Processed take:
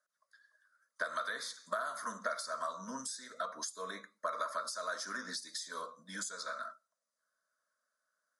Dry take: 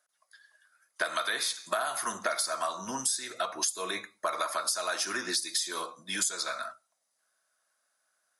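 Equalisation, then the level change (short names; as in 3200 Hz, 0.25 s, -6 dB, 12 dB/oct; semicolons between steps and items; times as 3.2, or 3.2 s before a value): air absorption 70 m; fixed phaser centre 530 Hz, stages 8; -4.0 dB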